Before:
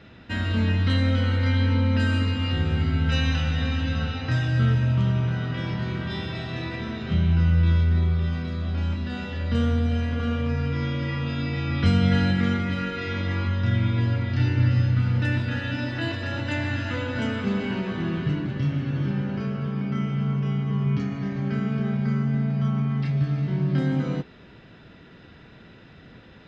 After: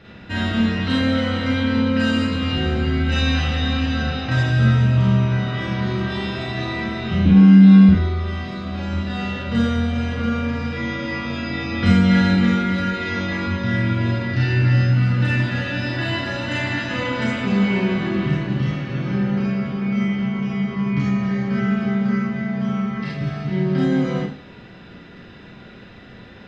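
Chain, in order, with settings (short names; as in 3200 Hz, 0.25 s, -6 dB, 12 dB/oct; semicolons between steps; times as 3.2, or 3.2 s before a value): 7.25–7.89 frequency shift +110 Hz; Schroeder reverb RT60 0.42 s, combs from 31 ms, DRR -4 dB; gain +1.5 dB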